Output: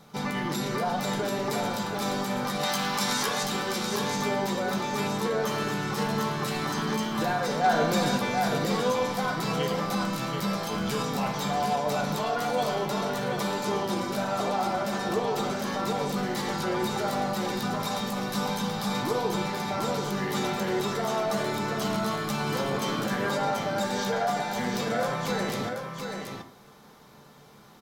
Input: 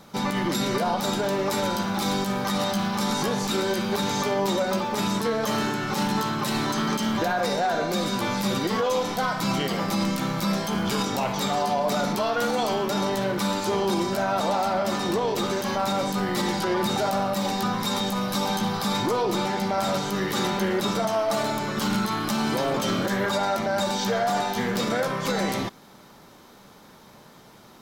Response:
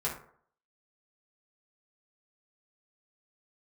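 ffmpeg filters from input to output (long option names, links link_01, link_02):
-filter_complex "[0:a]asettb=1/sr,asplit=3[link_01][link_02][link_03];[link_01]atrim=end=2.634[link_04];[link_02]atrim=start=2.63:end=3.43,asetpts=PTS-STARTPTS,afade=type=in:duration=0.004:curve=qsin,afade=type=out:start_time=0.796:duration=0.004:curve=qsin,tiltshelf=frequency=630:gain=-8[link_05];[link_03]atrim=start=3.426[link_06];[link_04][link_05]acrossfade=duration=0.004:curve1=hsin:curve2=qsin[link_07];[link_07][link_06]acrossfade=duration=0.004:curve1=qsin:curve2=hsin,asettb=1/sr,asplit=3[link_08][link_09][link_10];[link_08]atrim=end=7.644[link_11];[link_09]atrim=start=7.64:end=8.18,asetpts=PTS-STARTPTS,afade=type=in:duration=0.004:curve=qsin,afade=type=out:start_time=0.536:duration=0.004:curve=qsin,acontrast=33[link_12];[link_10]atrim=start=8.176[link_13];[link_11][link_12]acrossfade=duration=0.004:curve1=hsin:curve2=qsin[link_14];[link_14][link_13]acrossfade=duration=0.004:curve1=qsin:curve2=hsin,aecho=1:1:731:0.531,asplit=2[link_15][link_16];[1:a]atrim=start_sample=2205[link_17];[link_16][link_17]afir=irnorm=-1:irlink=0,volume=-7dB[link_18];[link_15][link_18]amix=inputs=2:normalize=0,volume=-8dB"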